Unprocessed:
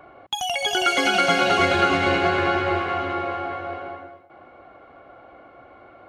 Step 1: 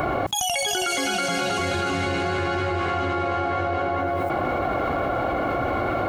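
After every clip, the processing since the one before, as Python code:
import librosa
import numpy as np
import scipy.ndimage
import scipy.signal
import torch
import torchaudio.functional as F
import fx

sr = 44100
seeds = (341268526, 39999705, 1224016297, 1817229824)

y = fx.curve_eq(x, sr, hz=(130.0, 470.0, 2800.0, 7900.0), db=(0, -6, -7, 4))
y = fx.env_flatten(y, sr, amount_pct=100)
y = F.gain(torch.from_numpy(y), -3.0).numpy()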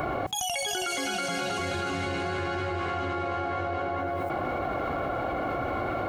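y = fx.comb_fb(x, sr, f0_hz=150.0, decay_s=0.94, harmonics='odd', damping=0.0, mix_pct=50)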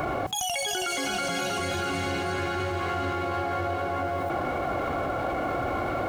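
y = fx.law_mismatch(x, sr, coded='mu')
y = y + 10.0 ** (-11.5 / 20.0) * np.pad(y, (int(1038 * sr / 1000.0), 0))[:len(y)]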